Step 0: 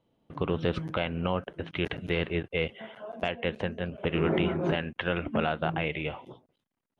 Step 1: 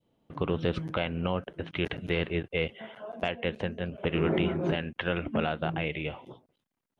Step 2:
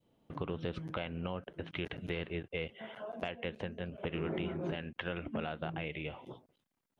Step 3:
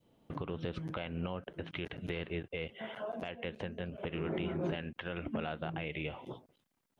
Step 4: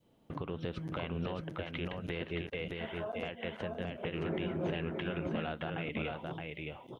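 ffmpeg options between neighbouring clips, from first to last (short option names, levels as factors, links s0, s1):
-af "adynamicequalizer=threshold=0.00891:dfrequency=1100:dqfactor=0.82:tfrequency=1100:tqfactor=0.82:attack=5:release=100:ratio=0.375:range=2.5:mode=cutabove:tftype=bell"
-af "acompressor=threshold=0.00891:ratio=2"
-af "alimiter=level_in=1.78:limit=0.0631:level=0:latency=1:release=237,volume=0.562,volume=1.5"
-af "aecho=1:1:619:0.668"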